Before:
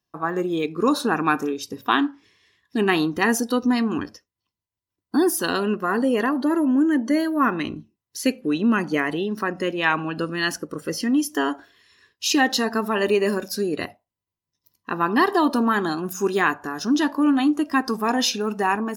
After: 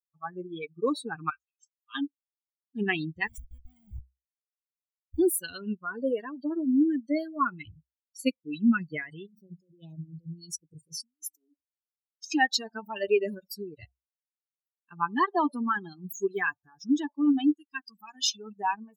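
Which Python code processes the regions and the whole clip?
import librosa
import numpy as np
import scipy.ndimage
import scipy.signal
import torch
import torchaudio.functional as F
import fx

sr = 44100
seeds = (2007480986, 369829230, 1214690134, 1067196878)

y = fx.chain(x, sr, fx.highpass(hz=1200.0, slope=24),
    fx.fixed_phaser(hz=2800.0, stages=8),
    fx.detune_double(cents=59), at=(1.3, 1.95))
y = fx.chain(y, sr, fx.level_steps(step_db=13),
    fx.schmitt(flips_db=-28.5), at=(3.27, 5.19))
y = fx.chain(y, sr, fx.cheby1_bandstop(low_hz=440.0, high_hz=5400.0, order=2),
    fx.over_compress(threshold_db=-31.0, ratio=-1.0), at=(9.26, 12.32))
y = fx.chain(y, sr, fx.peak_eq(hz=480.0, db=-10.5, octaves=2.0),
    fx.hum_notches(base_hz=60, count=4), at=(17.54, 18.33))
y = fx.bin_expand(y, sr, power=3.0)
y = fx.peak_eq(y, sr, hz=64.0, db=13.0, octaves=0.46)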